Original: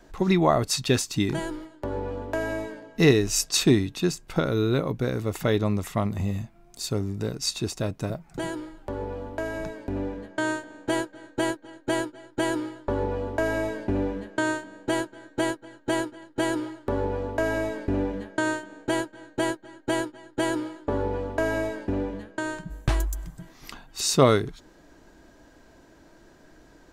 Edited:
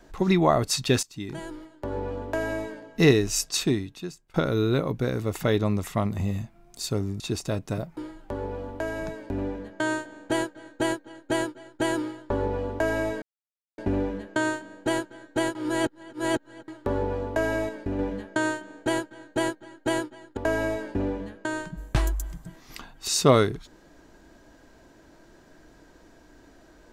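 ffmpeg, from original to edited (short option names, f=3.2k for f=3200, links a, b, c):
-filter_complex "[0:a]asplit=11[a][b][c][d][e][f][g][h][i][j][k];[a]atrim=end=1.03,asetpts=PTS-STARTPTS,afade=t=out:st=1.026:d=0.004:c=hsin:silence=0.125893[l];[b]atrim=start=1.03:end=4.34,asetpts=PTS-STARTPTS,afade=t=in:d=0.99:silence=0.125893,afade=t=out:st=2.09:d=1.22:silence=0.0668344[m];[c]atrim=start=4.34:end=7.202,asetpts=PTS-STARTPTS,afade=t=in:d=0.004:c=hsin:silence=0.0668344[n];[d]atrim=start=7.518:end=8.292[o];[e]atrim=start=8.548:end=13.8,asetpts=PTS-STARTPTS,afade=t=out:st=5.248:d=0.004:c=hsin,apad=pad_dur=0.56[p];[f]atrim=start=13.8:end=15.572,asetpts=PTS-STARTPTS,afade=t=in:d=0.004:c=hsin[q];[g]atrim=start=15.568:end=16.702,asetpts=PTS-STARTPTS,areverse[r];[h]atrim=start=16.698:end=17.712[s];[i]atrim=start=17.708:end=18.012,asetpts=PTS-STARTPTS,volume=-4dB[t];[j]atrim=start=18.008:end=20.392[u];[k]atrim=start=21.298[v];[l][m][n]concat=n=3:v=0:a=1[w];[w][o]acrossfade=d=0.004:c1=hsin:c2=hsin[x];[p][q]concat=n=2:v=0:a=1[y];[x][y]acrossfade=d=0.004:c1=hsin:c2=hsin[z];[z][r]acrossfade=d=0.004:c1=hsin:c2=hsin[aa];[aa][s]acrossfade=d=0.004:c1=hsin:c2=hsin[ab];[ab][t]acrossfade=d=0.004:c1=hsin:c2=hsin[ac];[ac][u]acrossfade=d=0.004:c1=hsin:c2=hsin[ad];[ad][v]acrossfade=d=0.004:c1=hsin:c2=hsin"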